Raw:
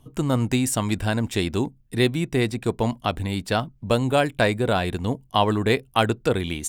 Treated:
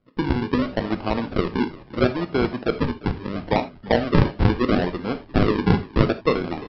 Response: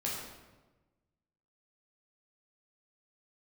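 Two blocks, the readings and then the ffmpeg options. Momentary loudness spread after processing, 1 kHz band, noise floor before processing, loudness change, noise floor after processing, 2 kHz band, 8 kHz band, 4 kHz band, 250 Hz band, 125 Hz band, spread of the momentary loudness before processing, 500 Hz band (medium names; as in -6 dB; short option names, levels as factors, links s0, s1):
7 LU, -1.0 dB, -56 dBFS, +0.5 dB, -46 dBFS, -1.5 dB, under -25 dB, -5.0 dB, +2.5 dB, +1.0 dB, 5 LU, +0.5 dB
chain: -filter_complex "[0:a]highpass=270,aresample=11025,acrusher=samples=12:mix=1:aa=0.000001:lfo=1:lforange=12:lforate=0.74,aresample=44100,agate=range=0.282:threshold=0.00501:ratio=16:detection=peak,aemphasis=mode=reproduction:type=75kf,asplit=4[s0][s1][s2][s3];[s1]adelay=347,afreqshift=-48,volume=0.106[s4];[s2]adelay=694,afreqshift=-96,volume=0.0447[s5];[s3]adelay=1041,afreqshift=-144,volume=0.0186[s6];[s0][s4][s5][s6]amix=inputs=4:normalize=0,asplit=2[s7][s8];[1:a]atrim=start_sample=2205,atrim=end_sample=3969[s9];[s8][s9]afir=irnorm=-1:irlink=0,volume=0.398[s10];[s7][s10]amix=inputs=2:normalize=0,volume=1.12"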